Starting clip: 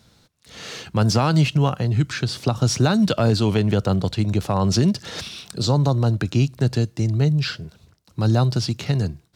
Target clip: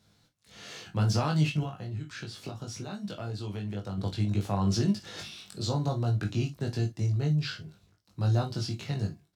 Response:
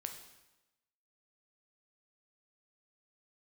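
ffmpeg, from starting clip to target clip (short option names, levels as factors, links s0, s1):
-filter_complex "[0:a]asettb=1/sr,asplit=3[s0][s1][s2];[s0]atrim=end=1.634[s3];[s1]atrim=start=1.63:end=3.98,asetpts=PTS-STARTPTS,afade=t=in:d=0.004:c=qsin,afade=t=out:st=2.346:d=0.004:c=qsin,acompressor=threshold=0.0501:ratio=4[s4];[s2]atrim=start=3.976[s5];[s3][s4]acrossfade=d=0.004:c1=hsin:c2=qsin[s6];[s6][s5]acrossfade=d=0.004:c1=qsin:c2=hsin,asplit=2[s7][s8];[s8]adelay=20,volume=0.708[s9];[s7][s9]amix=inputs=2:normalize=0[s10];[1:a]atrim=start_sample=2205,atrim=end_sample=3969,asetrate=66150,aresample=44100[s11];[s10][s11]afir=irnorm=-1:irlink=0,volume=0.562"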